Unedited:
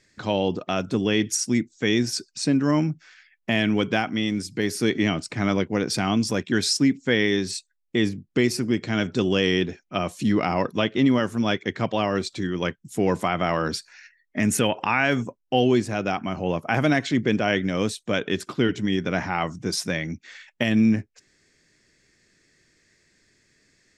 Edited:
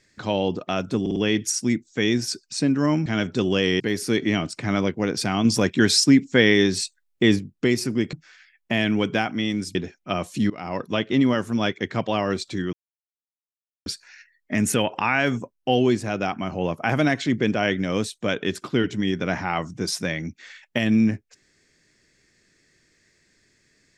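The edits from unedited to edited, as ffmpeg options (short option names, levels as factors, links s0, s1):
-filter_complex "[0:a]asplit=13[s0][s1][s2][s3][s4][s5][s6][s7][s8][s9][s10][s11][s12];[s0]atrim=end=1.062[s13];[s1]atrim=start=1.008:end=1.062[s14];[s2]atrim=start=1.008:end=1.062[s15];[s3]atrim=start=1.008:end=2.912[s16];[s4]atrim=start=8.858:end=9.602[s17];[s5]atrim=start=4.528:end=6.182[s18];[s6]atrim=start=6.178:end=8.122,asetpts=PTS-STARTPTS,volume=1.68[s19];[s7]atrim=start=8.118:end=8.862[s20];[s8]atrim=start=2.908:end=4.532[s21];[s9]atrim=start=9.598:end=10.35,asetpts=PTS-STARTPTS,afade=t=out:st=0.748:d=0.004:c=hsin:silence=0.0794328[s22];[s10]atrim=start=10.35:end=12.58,asetpts=PTS-STARTPTS,afade=t=in:d=0.69:c=qsin:silence=0.0794328,afade=t=out:st=2.226:d=0.004:c=hsin[s23];[s11]atrim=start=12.58:end=13.71,asetpts=PTS-STARTPTS,volume=0[s24];[s12]atrim=start=13.71,asetpts=PTS-STARTPTS,afade=t=in:d=0.004:c=hsin[s25];[s13][s14]acrossfade=d=0.004:c1=hsin:c2=hsin[s26];[s26][s15]acrossfade=d=0.004:c1=hsin:c2=hsin[s27];[s27][s16]acrossfade=d=0.004:c1=hsin:c2=hsin[s28];[s28][s17]acrossfade=d=0.004:c1=hsin:c2=hsin[s29];[s29][s18]acrossfade=d=0.004:c1=hsin:c2=hsin[s30];[s30][s19]acrossfade=d=0.004:c1=hsin:c2=hsin[s31];[s31][s20]acrossfade=d=0.004:c1=hsin:c2=hsin[s32];[s32][s21]acrossfade=d=0.004:c1=hsin:c2=hsin[s33];[s22][s23][s24][s25]concat=n=4:v=0:a=1[s34];[s33][s34]acrossfade=d=0.004:c1=hsin:c2=hsin"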